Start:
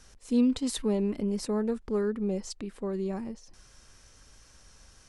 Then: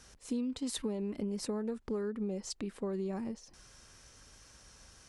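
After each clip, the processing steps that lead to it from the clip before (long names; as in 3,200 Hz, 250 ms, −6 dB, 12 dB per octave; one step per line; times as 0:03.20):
high-pass filter 55 Hz 6 dB per octave
downward compressor 10 to 1, threshold −32 dBFS, peak gain reduction 12.5 dB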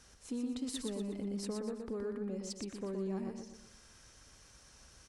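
in parallel at −10.5 dB: soft clipping −37.5 dBFS, distortion −10 dB
on the sum: repeating echo 120 ms, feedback 41%, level −5 dB
level −5.5 dB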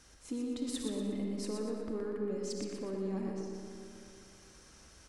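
hollow resonant body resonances 310/2,100 Hz, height 8 dB, ringing for 100 ms
on a send at −2.5 dB: convolution reverb RT60 2.7 s, pre-delay 15 ms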